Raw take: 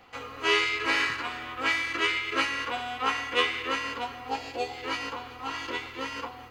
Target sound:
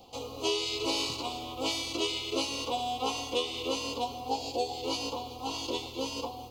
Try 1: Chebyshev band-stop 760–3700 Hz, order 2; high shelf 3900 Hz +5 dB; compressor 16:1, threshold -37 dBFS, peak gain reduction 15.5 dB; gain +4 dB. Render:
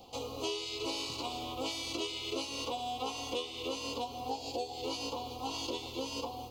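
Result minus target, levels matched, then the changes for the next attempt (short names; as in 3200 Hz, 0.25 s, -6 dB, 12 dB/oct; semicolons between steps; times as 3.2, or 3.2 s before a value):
compressor: peak gain reduction +7 dB
change: compressor 16:1, threshold -29.5 dBFS, peak gain reduction 8.5 dB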